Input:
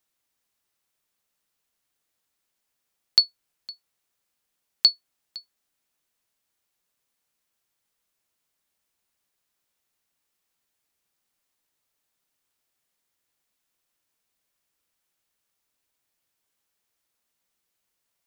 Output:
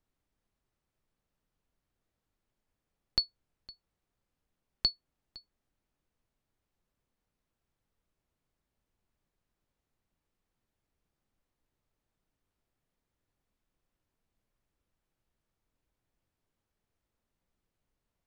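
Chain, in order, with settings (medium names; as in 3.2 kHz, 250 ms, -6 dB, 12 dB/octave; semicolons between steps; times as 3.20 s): tilt EQ -4 dB/octave; trim -2.5 dB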